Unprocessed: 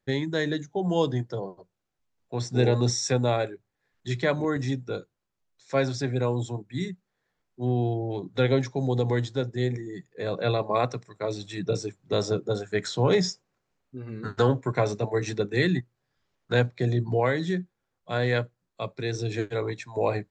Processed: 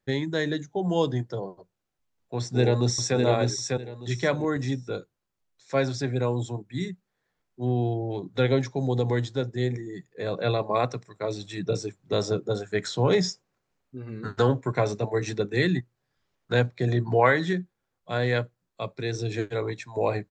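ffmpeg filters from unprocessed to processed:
-filter_complex "[0:a]asplit=2[a][b];[b]afade=t=in:st=2.38:d=0.01,afade=t=out:st=3.17:d=0.01,aecho=0:1:600|1200|1800:0.707946|0.141589|0.0283178[c];[a][c]amix=inputs=2:normalize=0,asettb=1/sr,asplit=3[d][e][f];[d]atrim=end=16.884[g];[e]atrim=start=16.88:end=17.53,asetpts=PTS-STARTPTS,afade=t=in:d=0.004:c=qsin,afade=t=out:st=0.646:d=0.004:c=qsin,equalizer=f=1.3k:t=o:w=2.1:g=9[h];[f]atrim=start=17.526[i];[g][h]acrossfade=d=0.004:c1=hsin:c2=qsin[j];[j][i]acrossfade=d=0.004:c1=qsin:c2=hsin"

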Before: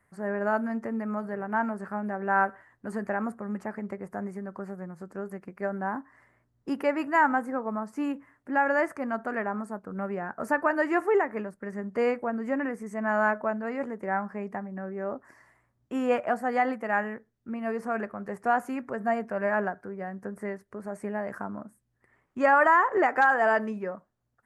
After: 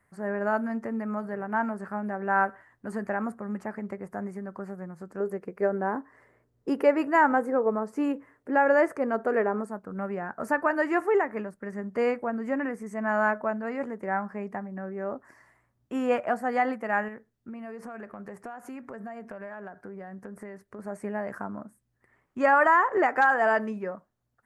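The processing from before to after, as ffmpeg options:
-filter_complex "[0:a]asettb=1/sr,asplit=3[a][b][c];[a]atrim=end=5.204[d];[b]atrim=start=5.2:end=9.65,asetpts=PTS-STARTPTS,afade=t=in:d=0.004:c=qsin,afade=t=out:st=4.446:d=0.004:c=qsin,equalizer=f=450:t=o:w=0.63:g=12.5[e];[c]atrim=start=9.646[f];[d][e]acrossfade=d=0.004:c1=hsin:c2=qsin[g];[g][f]acrossfade=d=0.004:c1=qsin:c2=hsin,asettb=1/sr,asplit=3[h][i][j];[h]atrim=end=17.084[k];[i]atrim=start=17.08:end=20.79,asetpts=PTS-STARTPTS,afade=t=in:d=0.004:c=qsin,afade=t=out:st=3.706:d=0.004:c=qsin,acompressor=threshold=-36dB:ratio=10:attack=3.2:release=140:knee=1:detection=peak[l];[j]atrim=start=20.786[m];[k][l]acrossfade=d=0.004:c1=hsin:c2=qsin[n];[n][m]acrossfade=d=0.004:c1=qsin:c2=hsin"

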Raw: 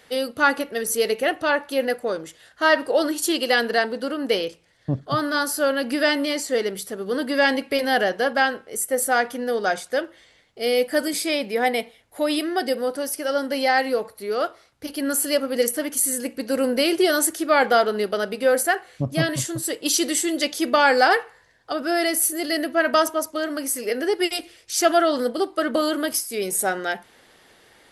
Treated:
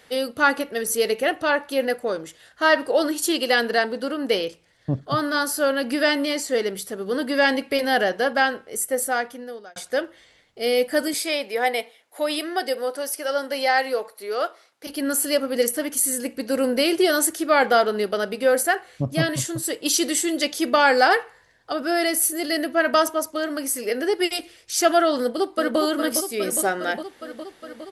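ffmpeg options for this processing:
-filter_complex "[0:a]asettb=1/sr,asplit=3[a][b][c];[a]atrim=end=11.144[d];[b]atrim=start=11.14:end=14.87,asetpts=PTS-STARTPTS,afade=t=in:d=0.004:c=qsin,afade=t=out:st=3.726:d=0.004:c=qsin,highpass=400[e];[c]atrim=start=14.866[f];[d][e]acrossfade=d=0.004:c1=hsin:c2=qsin[g];[g][f]acrossfade=d=0.004:c1=qsin:c2=hsin,asplit=2[h][i];[i]afade=t=in:st=25.16:d=0.01,afade=t=out:st=25.79:d=0.01,aecho=0:1:410|820|1230|1640|2050|2460|2870|3280|3690|4100|4510|4920:0.446684|0.335013|0.25126|0.188445|0.141333|0.106|0.0795001|0.0596251|0.0447188|0.0335391|0.0251543|0.0188657[j];[h][j]amix=inputs=2:normalize=0,asplit=2[k][l];[k]atrim=end=9.76,asetpts=PTS-STARTPTS,afade=t=out:st=8.84:d=0.92[m];[l]atrim=start=9.76,asetpts=PTS-STARTPTS,afade=t=in:d=0.004:c=hsin[n];[m][n]concat=n=2:v=0:a=1"

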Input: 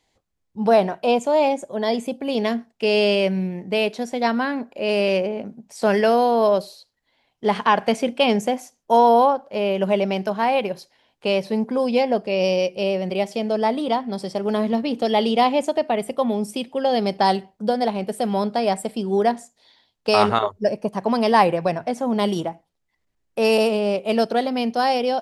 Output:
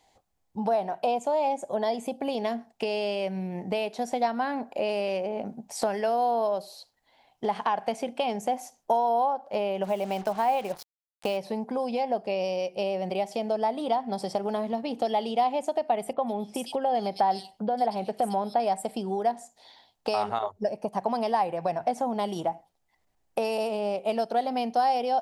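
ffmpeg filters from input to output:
-filter_complex "[0:a]asplit=3[a][b][c];[a]afade=t=out:st=9.83:d=0.02[d];[b]acrusher=bits=5:mix=0:aa=0.5,afade=t=in:st=9.83:d=0.02,afade=t=out:st=11.36:d=0.02[e];[c]afade=t=in:st=11.36:d=0.02[f];[d][e][f]amix=inputs=3:normalize=0,asettb=1/sr,asplit=3[g][h][i];[g]atrim=end=16.134[j];[h]atrim=start=16.13:end=18.6,asetpts=PTS-STARTPTS,afade=t=in:d=0.004:c=qsin,afade=t=out:st=2.466:d=0.004:c=qsin,acrossover=split=3400[k][l];[l]adelay=100[m];[k][m]amix=inputs=2:normalize=0,atrim=end_sample=108927[n];[i]atrim=start=18.596[o];[j][n]acrossfade=d=0.004:c1=hsin:c2=qsin[p];[p][o]acrossfade=d=0.004:c1=qsin:c2=hsin,highshelf=f=5.8k:g=5,acompressor=threshold=-29dB:ratio=10,equalizer=f=770:w=2.1:g=11"

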